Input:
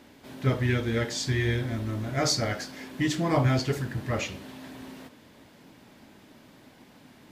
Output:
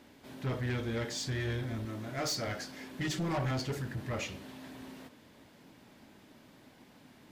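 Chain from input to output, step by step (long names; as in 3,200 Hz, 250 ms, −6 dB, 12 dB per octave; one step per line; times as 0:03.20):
0:01.85–0:02.47: high-pass filter 190 Hz 6 dB per octave
0:03.00–0:03.51: comb filter 5.3 ms, depth 79%
soft clipping −24.5 dBFS, distortion −10 dB
level −4.5 dB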